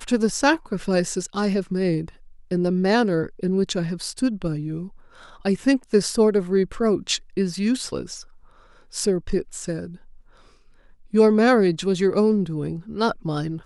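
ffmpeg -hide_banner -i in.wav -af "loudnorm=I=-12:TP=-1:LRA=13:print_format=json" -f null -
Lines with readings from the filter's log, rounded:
"input_i" : "-22.0",
"input_tp" : "-5.8",
"input_lra" : "5.8",
"input_thresh" : "-32.8",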